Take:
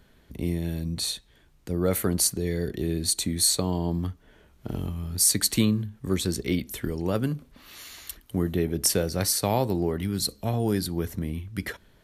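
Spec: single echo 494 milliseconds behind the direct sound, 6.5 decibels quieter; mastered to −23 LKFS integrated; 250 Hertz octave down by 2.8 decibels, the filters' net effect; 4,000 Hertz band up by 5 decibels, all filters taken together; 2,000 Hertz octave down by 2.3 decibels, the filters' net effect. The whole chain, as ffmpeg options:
ffmpeg -i in.wav -af "equalizer=frequency=250:width_type=o:gain=-4,equalizer=frequency=2000:width_type=o:gain=-4.5,equalizer=frequency=4000:width_type=o:gain=6.5,aecho=1:1:494:0.473,volume=2dB" out.wav

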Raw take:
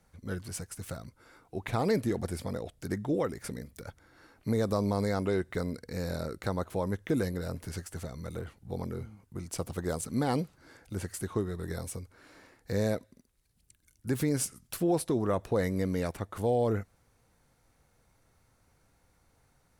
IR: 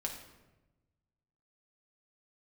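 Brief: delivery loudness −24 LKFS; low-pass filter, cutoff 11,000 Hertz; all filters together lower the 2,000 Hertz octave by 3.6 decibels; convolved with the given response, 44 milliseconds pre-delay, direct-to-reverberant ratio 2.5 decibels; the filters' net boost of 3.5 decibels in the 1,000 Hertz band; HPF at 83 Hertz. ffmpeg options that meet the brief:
-filter_complex "[0:a]highpass=83,lowpass=11000,equalizer=frequency=1000:width_type=o:gain=6.5,equalizer=frequency=2000:width_type=o:gain=-7.5,asplit=2[link_01][link_02];[1:a]atrim=start_sample=2205,adelay=44[link_03];[link_02][link_03]afir=irnorm=-1:irlink=0,volume=-3dB[link_04];[link_01][link_04]amix=inputs=2:normalize=0,volume=6.5dB"

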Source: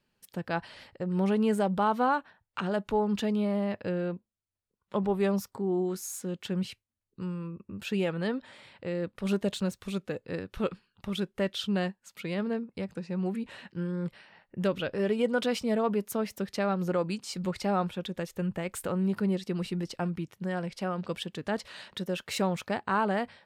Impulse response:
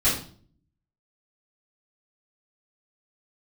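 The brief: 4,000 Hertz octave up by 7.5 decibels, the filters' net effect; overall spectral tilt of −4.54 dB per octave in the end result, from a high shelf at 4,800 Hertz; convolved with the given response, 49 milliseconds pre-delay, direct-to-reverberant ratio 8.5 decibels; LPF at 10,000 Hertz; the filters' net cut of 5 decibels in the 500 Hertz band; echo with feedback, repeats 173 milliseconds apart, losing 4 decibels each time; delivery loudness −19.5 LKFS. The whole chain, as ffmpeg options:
-filter_complex "[0:a]lowpass=10000,equalizer=frequency=500:width_type=o:gain=-6.5,equalizer=frequency=4000:width_type=o:gain=7.5,highshelf=frequency=4800:gain=5,aecho=1:1:173|346|519|692|865|1038|1211|1384|1557:0.631|0.398|0.25|0.158|0.0994|0.0626|0.0394|0.0249|0.0157,asplit=2[link_01][link_02];[1:a]atrim=start_sample=2205,adelay=49[link_03];[link_02][link_03]afir=irnorm=-1:irlink=0,volume=-22.5dB[link_04];[link_01][link_04]amix=inputs=2:normalize=0,volume=10dB"

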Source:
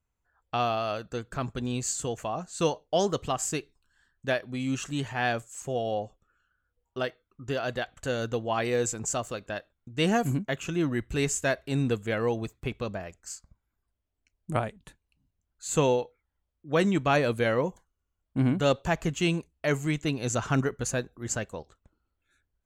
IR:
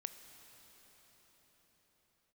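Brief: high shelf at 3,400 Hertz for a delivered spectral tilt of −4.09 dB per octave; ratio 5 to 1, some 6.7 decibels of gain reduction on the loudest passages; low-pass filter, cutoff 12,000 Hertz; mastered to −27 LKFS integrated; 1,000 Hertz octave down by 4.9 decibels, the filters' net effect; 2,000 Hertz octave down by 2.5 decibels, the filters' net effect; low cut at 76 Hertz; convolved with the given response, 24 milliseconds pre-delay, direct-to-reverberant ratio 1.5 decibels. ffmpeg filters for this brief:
-filter_complex "[0:a]highpass=76,lowpass=12000,equalizer=frequency=1000:width_type=o:gain=-7.5,equalizer=frequency=2000:width_type=o:gain=-3,highshelf=frequency=3400:gain=6.5,acompressor=threshold=-28dB:ratio=5,asplit=2[link_01][link_02];[1:a]atrim=start_sample=2205,adelay=24[link_03];[link_02][link_03]afir=irnorm=-1:irlink=0,volume=1.5dB[link_04];[link_01][link_04]amix=inputs=2:normalize=0,volume=4.5dB"

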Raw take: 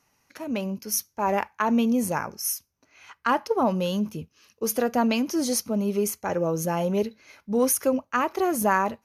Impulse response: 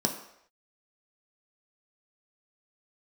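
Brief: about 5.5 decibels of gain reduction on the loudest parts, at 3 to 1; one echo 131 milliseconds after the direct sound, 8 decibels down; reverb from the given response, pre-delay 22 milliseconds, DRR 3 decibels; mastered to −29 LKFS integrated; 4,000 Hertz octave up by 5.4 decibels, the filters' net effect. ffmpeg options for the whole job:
-filter_complex "[0:a]equalizer=frequency=4000:width_type=o:gain=8,acompressor=threshold=-25dB:ratio=3,aecho=1:1:131:0.398,asplit=2[link_01][link_02];[1:a]atrim=start_sample=2205,adelay=22[link_03];[link_02][link_03]afir=irnorm=-1:irlink=0,volume=-11dB[link_04];[link_01][link_04]amix=inputs=2:normalize=0,volume=-6dB"

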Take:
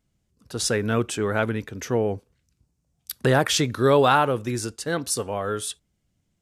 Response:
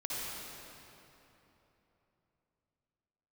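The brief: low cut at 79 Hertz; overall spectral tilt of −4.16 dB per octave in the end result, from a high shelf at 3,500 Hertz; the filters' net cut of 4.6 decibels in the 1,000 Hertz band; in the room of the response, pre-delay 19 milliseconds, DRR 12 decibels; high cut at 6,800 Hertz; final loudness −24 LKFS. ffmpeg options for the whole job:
-filter_complex "[0:a]highpass=79,lowpass=6800,equalizer=frequency=1000:width_type=o:gain=-7,highshelf=frequency=3500:gain=4.5,asplit=2[link_01][link_02];[1:a]atrim=start_sample=2205,adelay=19[link_03];[link_02][link_03]afir=irnorm=-1:irlink=0,volume=-16dB[link_04];[link_01][link_04]amix=inputs=2:normalize=0"

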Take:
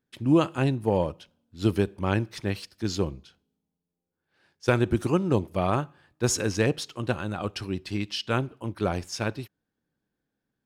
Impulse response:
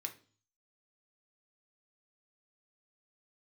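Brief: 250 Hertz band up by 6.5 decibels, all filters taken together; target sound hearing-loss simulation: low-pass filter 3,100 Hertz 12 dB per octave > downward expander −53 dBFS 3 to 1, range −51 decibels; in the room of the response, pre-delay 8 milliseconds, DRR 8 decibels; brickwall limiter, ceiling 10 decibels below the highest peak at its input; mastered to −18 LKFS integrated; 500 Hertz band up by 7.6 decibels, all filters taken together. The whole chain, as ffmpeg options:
-filter_complex "[0:a]equalizer=frequency=250:width_type=o:gain=6,equalizer=frequency=500:width_type=o:gain=7.5,alimiter=limit=-12.5dB:level=0:latency=1,asplit=2[link_01][link_02];[1:a]atrim=start_sample=2205,adelay=8[link_03];[link_02][link_03]afir=irnorm=-1:irlink=0,volume=-6.5dB[link_04];[link_01][link_04]amix=inputs=2:normalize=0,lowpass=3100,agate=range=-51dB:threshold=-53dB:ratio=3,volume=8dB"

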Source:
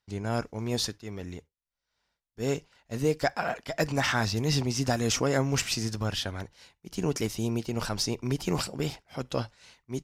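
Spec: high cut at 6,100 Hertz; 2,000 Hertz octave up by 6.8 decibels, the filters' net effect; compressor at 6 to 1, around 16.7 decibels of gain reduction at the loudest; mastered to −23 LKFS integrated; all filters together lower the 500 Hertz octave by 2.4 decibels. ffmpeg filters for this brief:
ffmpeg -i in.wav -af "lowpass=6100,equalizer=frequency=500:width_type=o:gain=-3.5,equalizer=frequency=2000:width_type=o:gain=9,acompressor=threshold=-38dB:ratio=6,volume=19dB" out.wav

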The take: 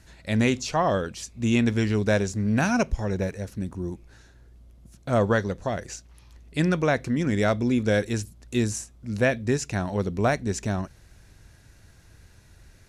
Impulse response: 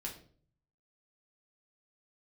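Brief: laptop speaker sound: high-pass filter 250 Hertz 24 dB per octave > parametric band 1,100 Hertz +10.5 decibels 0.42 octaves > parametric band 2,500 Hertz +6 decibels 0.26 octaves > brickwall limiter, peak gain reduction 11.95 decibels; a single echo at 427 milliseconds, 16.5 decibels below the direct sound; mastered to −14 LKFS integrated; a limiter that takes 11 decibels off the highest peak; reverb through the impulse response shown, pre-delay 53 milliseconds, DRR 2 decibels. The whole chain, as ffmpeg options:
-filter_complex "[0:a]alimiter=limit=-21dB:level=0:latency=1,aecho=1:1:427:0.15,asplit=2[link_01][link_02];[1:a]atrim=start_sample=2205,adelay=53[link_03];[link_02][link_03]afir=irnorm=-1:irlink=0,volume=-1dB[link_04];[link_01][link_04]amix=inputs=2:normalize=0,highpass=frequency=250:width=0.5412,highpass=frequency=250:width=1.3066,equalizer=frequency=1100:width_type=o:width=0.42:gain=10.5,equalizer=frequency=2500:width_type=o:width=0.26:gain=6,volume=20.5dB,alimiter=limit=-4.5dB:level=0:latency=1"

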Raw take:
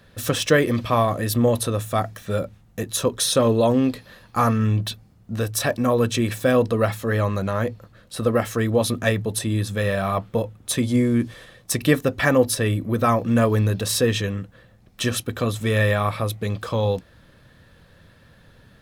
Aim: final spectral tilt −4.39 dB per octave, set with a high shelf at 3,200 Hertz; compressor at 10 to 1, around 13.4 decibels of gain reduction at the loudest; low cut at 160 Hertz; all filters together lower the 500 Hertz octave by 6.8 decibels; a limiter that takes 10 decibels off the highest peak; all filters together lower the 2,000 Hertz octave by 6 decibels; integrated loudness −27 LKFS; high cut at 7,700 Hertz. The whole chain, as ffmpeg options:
ffmpeg -i in.wav -af "highpass=160,lowpass=7700,equalizer=frequency=500:width_type=o:gain=-7.5,equalizer=frequency=2000:width_type=o:gain=-8.5,highshelf=frequency=3200:gain=4.5,acompressor=threshold=-31dB:ratio=10,volume=11.5dB,alimiter=limit=-16dB:level=0:latency=1" out.wav

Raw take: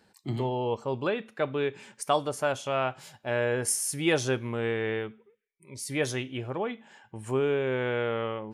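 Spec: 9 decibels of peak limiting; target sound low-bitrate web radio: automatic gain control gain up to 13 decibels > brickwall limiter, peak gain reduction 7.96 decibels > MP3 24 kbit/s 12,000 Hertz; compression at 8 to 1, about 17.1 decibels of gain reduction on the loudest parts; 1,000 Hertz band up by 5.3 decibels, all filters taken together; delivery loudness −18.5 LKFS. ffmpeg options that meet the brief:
ffmpeg -i in.wav -af "equalizer=frequency=1000:width_type=o:gain=7,acompressor=threshold=-33dB:ratio=8,alimiter=level_in=4.5dB:limit=-24dB:level=0:latency=1,volume=-4.5dB,dynaudnorm=maxgain=13dB,alimiter=level_in=12.5dB:limit=-24dB:level=0:latency=1,volume=-12.5dB,volume=28dB" -ar 12000 -c:a libmp3lame -b:a 24k out.mp3

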